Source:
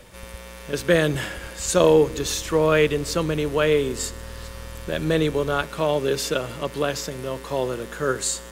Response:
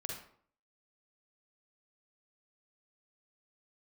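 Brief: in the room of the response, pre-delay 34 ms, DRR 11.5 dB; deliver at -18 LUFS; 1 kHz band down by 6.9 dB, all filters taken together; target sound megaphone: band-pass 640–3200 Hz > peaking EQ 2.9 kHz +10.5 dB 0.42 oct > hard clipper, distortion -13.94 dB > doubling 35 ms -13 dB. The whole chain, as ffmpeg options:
-filter_complex "[0:a]equalizer=f=1000:t=o:g=-8.5,asplit=2[s0][s1];[1:a]atrim=start_sample=2205,adelay=34[s2];[s1][s2]afir=irnorm=-1:irlink=0,volume=0.282[s3];[s0][s3]amix=inputs=2:normalize=0,highpass=640,lowpass=3200,equalizer=f=2900:t=o:w=0.42:g=10.5,asoftclip=type=hard:threshold=0.112,asplit=2[s4][s5];[s5]adelay=35,volume=0.224[s6];[s4][s6]amix=inputs=2:normalize=0,volume=3.55"

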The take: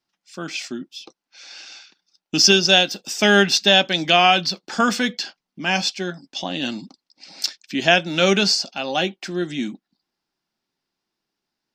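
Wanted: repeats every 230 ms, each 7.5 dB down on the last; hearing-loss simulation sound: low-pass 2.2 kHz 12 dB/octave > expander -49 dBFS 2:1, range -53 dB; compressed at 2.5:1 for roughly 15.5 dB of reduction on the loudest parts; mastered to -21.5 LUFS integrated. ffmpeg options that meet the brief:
-af "acompressor=threshold=0.02:ratio=2.5,lowpass=2200,aecho=1:1:230|460|690|920|1150:0.422|0.177|0.0744|0.0312|0.0131,agate=range=0.00224:threshold=0.00355:ratio=2,volume=4.47"

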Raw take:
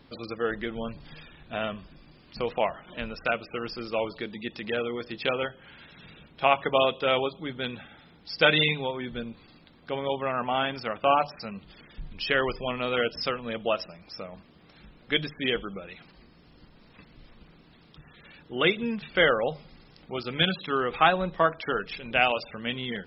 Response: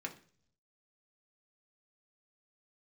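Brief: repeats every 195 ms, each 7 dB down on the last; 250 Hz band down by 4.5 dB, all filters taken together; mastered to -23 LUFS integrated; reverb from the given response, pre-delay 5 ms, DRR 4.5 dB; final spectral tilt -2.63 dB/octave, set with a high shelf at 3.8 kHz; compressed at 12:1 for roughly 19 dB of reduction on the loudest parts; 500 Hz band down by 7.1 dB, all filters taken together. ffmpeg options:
-filter_complex "[0:a]equalizer=f=250:t=o:g=-3.5,equalizer=f=500:t=o:g=-8,highshelf=f=3800:g=-6.5,acompressor=threshold=0.0141:ratio=12,aecho=1:1:195|390|585|780|975:0.447|0.201|0.0905|0.0407|0.0183,asplit=2[s0][s1];[1:a]atrim=start_sample=2205,adelay=5[s2];[s1][s2]afir=irnorm=-1:irlink=0,volume=0.596[s3];[s0][s3]amix=inputs=2:normalize=0,volume=7.5"

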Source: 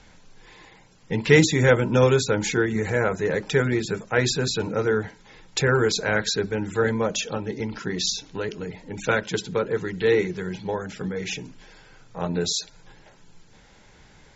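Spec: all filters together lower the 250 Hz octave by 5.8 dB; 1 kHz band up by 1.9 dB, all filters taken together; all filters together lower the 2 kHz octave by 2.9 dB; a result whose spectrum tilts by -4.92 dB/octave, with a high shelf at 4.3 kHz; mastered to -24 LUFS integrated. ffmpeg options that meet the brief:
-af "equalizer=f=250:t=o:g=-9,equalizer=f=1000:t=o:g=5.5,equalizer=f=2000:t=o:g=-4.5,highshelf=f=4300:g=-8,volume=1.26"

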